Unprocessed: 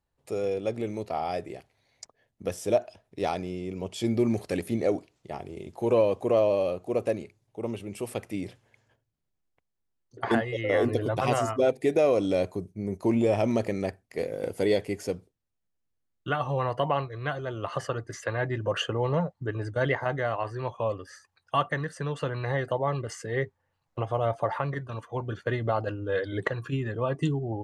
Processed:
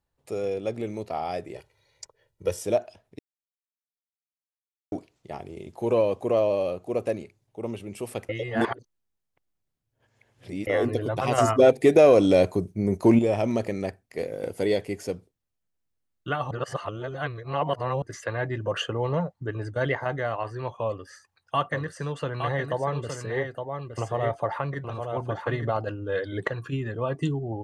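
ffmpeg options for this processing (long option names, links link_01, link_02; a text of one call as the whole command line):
ffmpeg -i in.wav -filter_complex "[0:a]asettb=1/sr,asplit=3[link_01][link_02][link_03];[link_01]atrim=end=1.554[link_04];[link_02]atrim=start=1.55:end=2.63,asetpts=PTS-STARTPTS,afade=type=in:duration=0.004:curve=qsin,afade=type=out:start_time=1.076:duration=0.004:curve=qsin,aecho=1:1:2.1:0.93,atrim=end_sample=47628[link_05];[link_03]atrim=start=2.626[link_06];[link_04][link_05]acrossfade=duration=0.004:curve1=hsin:curve2=qsin[link_07];[link_07][link_06]acrossfade=duration=0.004:curve1=qsin:curve2=hsin,asettb=1/sr,asplit=3[link_08][link_09][link_10];[link_08]atrim=end=11.384[link_11];[link_09]atrim=start=11.38:end=13.19,asetpts=PTS-STARTPTS,afade=type=in:duration=0.004:curve=qsin,afade=type=out:start_time=1.806:duration=0.004:curve=qsin,acontrast=89[link_12];[link_10]atrim=start=13.186[link_13];[link_11][link_12]acrossfade=duration=0.004:curve1=hsin:curve2=qsin[link_14];[link_14][link_13]acrossfade=duration=0.004:curve1=qsin:curve2=hsin,asettb=1/sr,asplit=3[link_15][link_16][link_17];[link_15]atrim=end=20.874[link_18];[link_16]atrim=start=20.87:end=25.77,asetpts=PTS-STARTPTS,afade=type=in:duration=0.004:curve=qsin,afade=type=out:start_time=4.896:duration=0.004:curve=qsin,aecho=1:1:865:0.501,atrim=end_sample=216090[link_19];[link_17]atrim=start=25.766[link_20];[link_18][link_19]acrossfade=duration=0.004:curve1=hsin:curve2=qsin[link_21];[link_21][link_20]acrossfade=duration=0.004:curve1=qsin:curve2=hsin,asplit=7[link_22][link_23][link_24][link_25][link_26][link_27][link_28];[link_22]atrim=end=3.19,asetpts=PTS-STARTPTS,afade=type=out:start_time=3.186:duration=0.004:curve=hsin[link_29];[link_23]atrim=start=3.19:end=4.92,asetpts=PTS-STARTPTS,volume=0[link_30];[link_24]atrim=start=4.92:end=8.292,asetpts=PTS-STARTPTS,afade=type=in:duration=0.004:curve=hsin[link_31];[link_25]atrim=start=8.288:end=10.672,asetpts=PTS-STARTPTS,areverse[link_32];[link_26]atrim=start=10.668:end=16.512[link_33];[link_27]atrim=start=16.508:end=18.022,asetpts=PTS-STARTPTS,areverse[link_34];[link_28]atrim=start=18.018[link_35];[link_29][link_30][link_31]concat=n=3:v=0:a=1[link_36];[link_36][link_32]acrossfade=duration=0.004:curve1=hsin:curve2=hsin[link_37];[link_37][link_33]acrossfade=duration=0.004:curve1=hsin:curve2=hsin[link_38];[link_38][link_34]acrossfade=duration=0.004:curve1=hsin:curve2=hsin[link_39];[link_39][link_35]acrossfade=duration=0.004:curve1=hsin:curve2=hsin" out.wav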